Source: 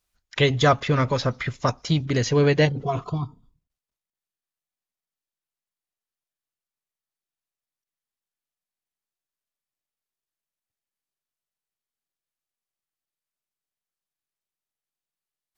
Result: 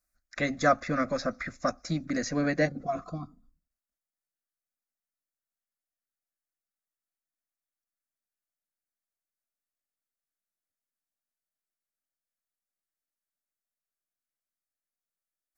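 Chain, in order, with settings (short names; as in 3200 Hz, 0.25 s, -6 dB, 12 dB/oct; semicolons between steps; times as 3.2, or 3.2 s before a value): fixed phaser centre 620 Hz, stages 8; gain -2.5 dB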